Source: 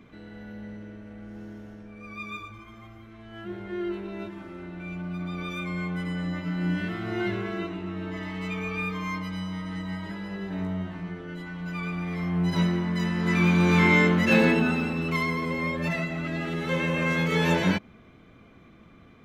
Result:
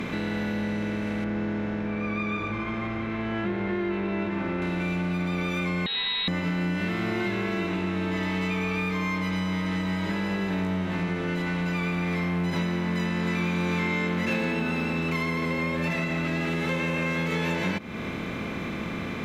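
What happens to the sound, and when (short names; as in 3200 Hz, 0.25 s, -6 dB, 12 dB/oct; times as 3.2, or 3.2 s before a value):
1.24–4.62 LPF 2000 Hz
5.86–6.28 inverted band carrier 4000 Hz
whole clip: per-bin compression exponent 0.6; compressor, threshold -31 dBFS; gain +6 dB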